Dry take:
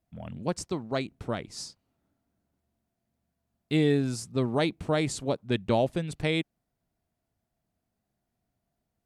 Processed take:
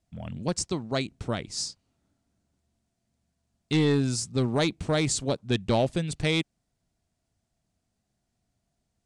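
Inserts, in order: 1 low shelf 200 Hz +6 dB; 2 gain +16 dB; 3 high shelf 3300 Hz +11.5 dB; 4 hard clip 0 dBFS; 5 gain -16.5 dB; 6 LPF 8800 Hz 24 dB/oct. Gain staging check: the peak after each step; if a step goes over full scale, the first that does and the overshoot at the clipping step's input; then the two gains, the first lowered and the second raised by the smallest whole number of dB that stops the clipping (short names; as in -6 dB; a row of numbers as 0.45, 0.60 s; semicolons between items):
-10.0, +6.0, +7.5, 0.0, -16.5, -15.5 dBFS; step 2, 7.5 dB; step 2 +8 dB, step 5 -8.5 dB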